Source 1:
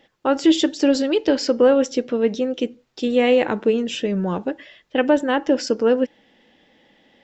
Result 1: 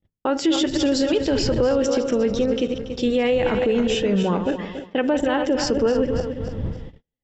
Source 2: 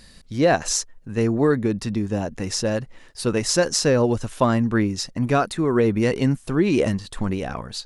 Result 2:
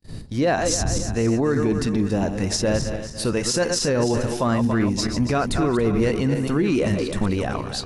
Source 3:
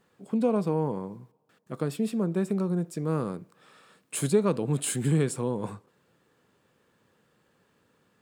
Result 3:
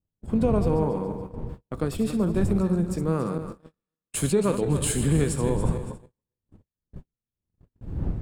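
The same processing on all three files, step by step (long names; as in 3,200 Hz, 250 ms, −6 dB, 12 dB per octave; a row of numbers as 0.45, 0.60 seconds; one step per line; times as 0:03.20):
feedback delay that plays each chunk backwards 141 ms, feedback 61%, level −9 dB
wind on the microphone 130 Hz −35 dBFS
brickwall limiter −14.5 dBFS
noise gate −37 dBFS, range −44 dB
normalise the peak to −12 dBFS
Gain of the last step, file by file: +2.5, +2.5, +2.5 decibels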